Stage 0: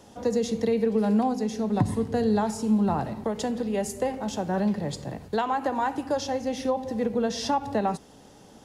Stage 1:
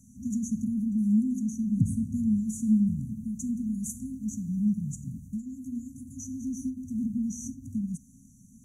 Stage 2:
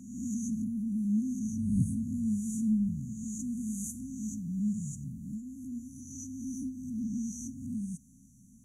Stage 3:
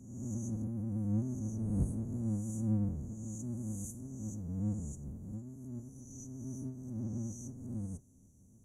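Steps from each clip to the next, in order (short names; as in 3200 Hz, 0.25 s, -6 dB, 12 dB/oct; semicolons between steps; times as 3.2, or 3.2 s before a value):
FFT band-reject 270–5800 Hz
spectral swells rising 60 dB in 1.02 s; gain -6 dB
octaver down 1 oct, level +1 dB; gain -7 dB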